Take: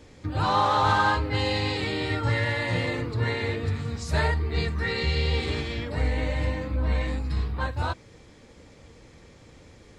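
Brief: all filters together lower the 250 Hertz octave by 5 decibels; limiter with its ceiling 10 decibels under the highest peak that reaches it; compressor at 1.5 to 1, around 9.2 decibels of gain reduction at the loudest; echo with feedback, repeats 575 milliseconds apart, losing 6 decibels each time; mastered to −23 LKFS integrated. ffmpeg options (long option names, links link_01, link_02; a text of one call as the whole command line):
ffmpeg -i in.wav -af "equalizer=frequency=250:width_type=o:gain=-7,acompressor=threshold=-45dB:ratio=1.5,alimiter=level_in=6dB:limit=-24dB:level=0:latency=1,volume=-6dB,aecho=1:1:575|1150|1725|2300|2875|3450:0.501|0.251|0.125|0.0626|0.0313|0.0157,volume=15dB" out.wav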